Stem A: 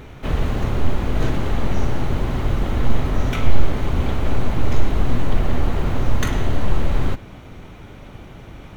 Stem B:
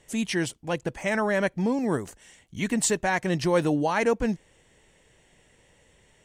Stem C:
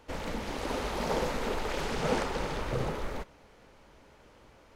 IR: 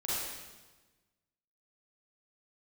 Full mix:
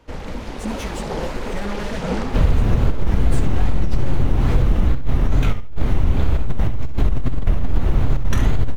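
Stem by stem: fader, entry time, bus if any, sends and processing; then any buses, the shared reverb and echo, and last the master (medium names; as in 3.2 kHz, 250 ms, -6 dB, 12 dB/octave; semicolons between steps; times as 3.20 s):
-1.0 dB, 2.10 s, no send, echo send -11.5 dB, compressor with a negative ratio -15 dBFS, ratio -0.5
-16.5 dB, 0.50 s, no send, echo send -13.5 dB, waveshaping leveller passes 5; three-phase chorus
+2.0 dB, 0.00 s, no send, no echo send, treble shelf 9.4 kHz -5 dB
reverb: none
echo: feedback delay 68 ms, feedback 20%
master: wow and flutter 130 cents; bass shelf 190 Hz +8.5 dB; compression 3:1, threshold -11 dBFS, peak gain reduction 7.5 dB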